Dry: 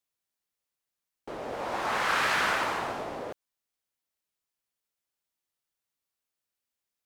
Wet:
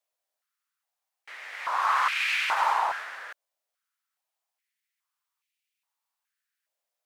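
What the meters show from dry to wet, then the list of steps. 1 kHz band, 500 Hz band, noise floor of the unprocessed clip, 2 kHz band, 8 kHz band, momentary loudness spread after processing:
+4.5 dB, −8.5 dB, below −85 dBFS, +1.0 dB, −2.5 dB, 17 LU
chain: brickwall limiter −21.5 dBFS, peak gain reduction 7 dB
high-pass on a step sequencer 2.4 Hz 610–2,400 Hz

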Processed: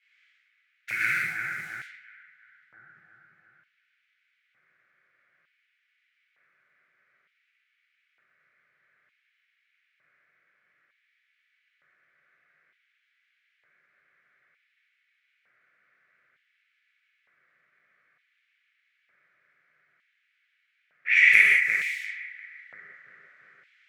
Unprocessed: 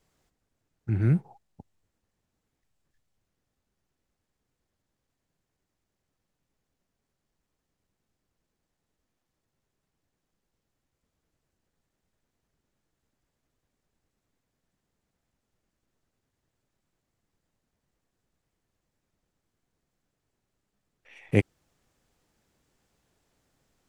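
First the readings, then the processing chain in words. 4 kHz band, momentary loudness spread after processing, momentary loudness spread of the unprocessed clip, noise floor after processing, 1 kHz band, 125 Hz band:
can't be measured, 23 LU, 13 LU, −74 dBFS, +9.5 dB, below −25 dB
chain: mu-law and A-law mismatch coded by mu
low-pass that shuts in the quiet parts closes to 540 Hz, open at −40.5 dBFS
drawn EQ curve 160 Hz 0 dB, 230 Hz −11 dB, 970 Hz −20 dB, 1,500 Hz +5 dB, 2,200 Hz +15 dB
downward compressor 5 to 1, threshold −30 dBFS, peak gain reduction 16.5 dB
flat-topped bell 1,600 Hz +14 dB 1.3 octaves
on a send: bucket-brigade delay 346 ms, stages 4,096, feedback 61%, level −4 dB
on the sum: reverb whose tail is shaped and stops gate 220 ms flat, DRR −5 dB
auto-filter high-pass square 0.55 Hz 590–3,000 Hz

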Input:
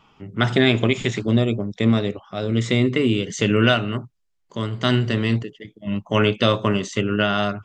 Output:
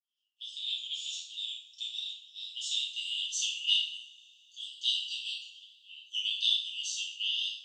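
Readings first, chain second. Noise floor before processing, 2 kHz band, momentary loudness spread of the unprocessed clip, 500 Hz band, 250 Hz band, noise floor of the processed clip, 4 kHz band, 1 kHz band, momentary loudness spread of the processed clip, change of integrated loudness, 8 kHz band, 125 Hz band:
−68 dBFS, −17.0 dB, 11 LU, below −40 dB, below −40 dB, −74 dBFS, −1.0 dB, below −40 dB, 17 LU, −11.0 dB, 0.0 dB, below −40 dB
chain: fade in at the beginning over 1.50 s
Butterworth high-pass 2,900 Hz 96 dB per octave
coupled-rooms reverb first 0.54 s, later 3.4 s, from −27 dB, DRR −7.5 dB
level −8 dB

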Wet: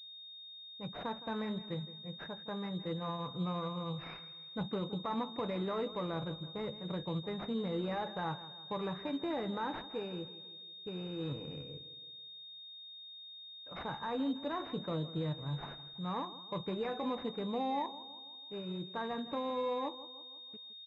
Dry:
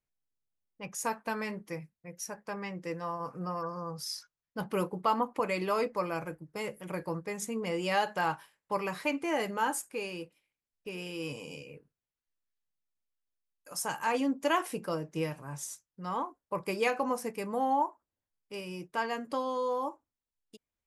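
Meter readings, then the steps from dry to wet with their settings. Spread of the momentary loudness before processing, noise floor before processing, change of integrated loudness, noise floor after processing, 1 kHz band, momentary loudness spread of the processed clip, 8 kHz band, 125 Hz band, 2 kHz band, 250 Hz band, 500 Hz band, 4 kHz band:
12 LU, below −85 dBFS, −5.5 dB, −51 dBFS, −7.5 dB, 11 LU, below −30 dB, +2.0 dB, −11.5 dB, −1.5 dB, −5.0 dB, +2.0 dB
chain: parametric band 84 Hz +14 dB 2.1 octaves
brickwall limiter −23.5 dBFS, peak gain reduction 7.5 dB
repeating echo 164 ms, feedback 50%, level −15.5 dB
switching amplifier with a slow clock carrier 3,700 Hz
level −4.5 dB

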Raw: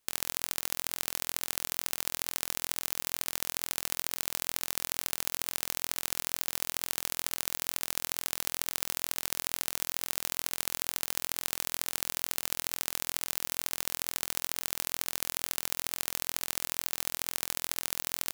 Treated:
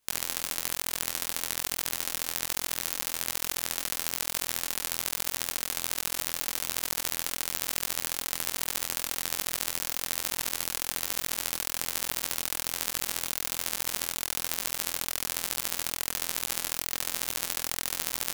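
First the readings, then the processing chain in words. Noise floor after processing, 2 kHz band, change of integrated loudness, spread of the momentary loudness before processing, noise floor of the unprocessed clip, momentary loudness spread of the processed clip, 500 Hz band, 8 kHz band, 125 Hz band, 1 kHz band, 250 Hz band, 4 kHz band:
−40 dBFS, +3.0 dB, +2.5 dB, 0 LU, −76 dBFS, 1 LU, +3.0 dB, +3.0 dB, +2.5 dB, +3.0 dB, +3.0 dB, +3.0 dB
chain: micro pitch shift up and down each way 40 cents
level +6.5 dB

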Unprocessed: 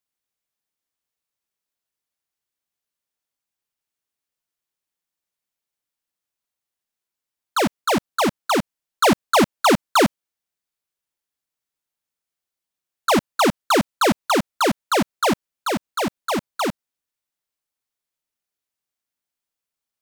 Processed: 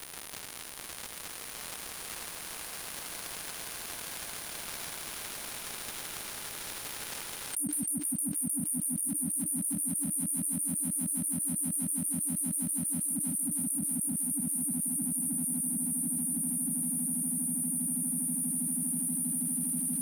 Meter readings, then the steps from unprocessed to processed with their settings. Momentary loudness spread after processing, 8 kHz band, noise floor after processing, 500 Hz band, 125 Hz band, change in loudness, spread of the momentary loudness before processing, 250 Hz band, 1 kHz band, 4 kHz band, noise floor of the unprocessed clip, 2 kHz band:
9 LU, +6.5 dB, −43 dBFS, −28.0 dB, −6.5 dB, −10.0 dB, 9 LU, −9.0 dB, −26.0 dB, −14.0 dB, below −85 dBFS, −16.5 dB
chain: meter weighting curve ITU-R 468
brick-wall band-stop 300–8,800 Hz
parametric band 2,700 Hz −7.5 dB 2.2 octaves
transient designer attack −7 dB, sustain +6 dB
in parallel at −8.5 dB: soft clipping −32.5 dBFS, distortion −9 dB
on the sum: surface crackle 220 per second −61 dBFS
hard clipping −20.5 dBFS, distortion −31 dB
on a send: echo that builds up and dies away 161 ms, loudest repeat 8, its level −9.5 dB
on the sum: envelope flattener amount 100%
level −4.5 dB

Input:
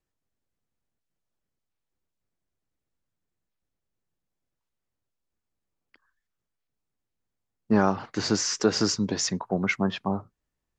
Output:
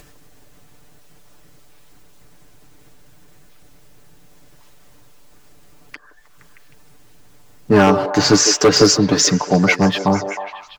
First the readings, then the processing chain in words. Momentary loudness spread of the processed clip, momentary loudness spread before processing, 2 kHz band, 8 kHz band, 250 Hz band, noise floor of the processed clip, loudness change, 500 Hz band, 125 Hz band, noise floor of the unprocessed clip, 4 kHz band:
8 LU, 7 LU, +12.0 dB, +13.0 dB, +10.5 dB, −46 dBFS, +11.5 dB, +13.0 dB, +11.5 dB, −84 dBFS, +13.0 dB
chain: comb filter 6.8 ms, depth 72%
leveller curve on the samples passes 1
in parallel at +2.5 dB: upward compression, threshold −22 dBFS
on the sum: wave folding −4.5 dBFS
on a send: echo through a band-pass that steps 156 ms, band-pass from 480 Hz, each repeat 0.7 octaves, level −5 dB

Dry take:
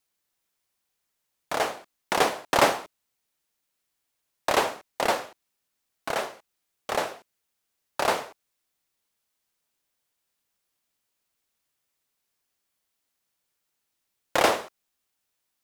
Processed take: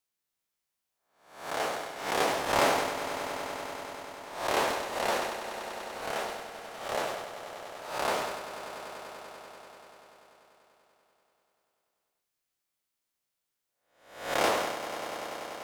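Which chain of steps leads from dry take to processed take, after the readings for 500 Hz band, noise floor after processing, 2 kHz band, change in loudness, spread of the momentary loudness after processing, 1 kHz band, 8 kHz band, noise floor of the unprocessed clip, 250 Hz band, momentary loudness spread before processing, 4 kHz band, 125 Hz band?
−2.5 dB, −85 dBFS, −2.5 dB, −5.5 dB, 15 LU, −2.5 dB, −2.5 dB, −80 dBFS, −2.5 dB, 16 LU, −2.5 dB, −2.5 dB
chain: peak hold with a rise ahead of every peak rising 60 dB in 0.59 s
echo that builds up and dies away 97 ms, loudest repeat 5, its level −14 dB
level that may fall only so fast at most 40 dB per second
level −8.5 dB

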